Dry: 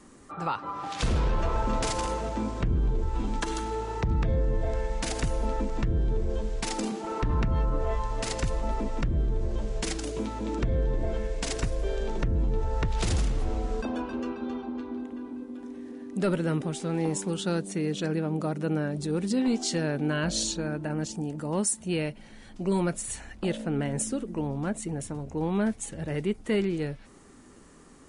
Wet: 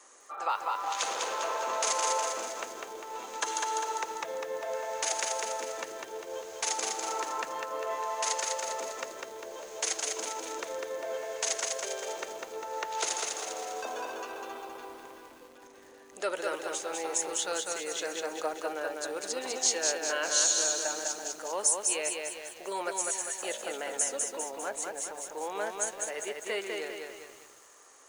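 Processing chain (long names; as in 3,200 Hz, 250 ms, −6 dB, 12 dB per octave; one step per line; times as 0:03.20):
high-pass filter 510 Hz 24 dB per octave
parametric band 6,500 Hz +11.5 dB 0.21 octaves
feedback echo at a low word length 200 ms, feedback 55%, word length 9 bits, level −3 dB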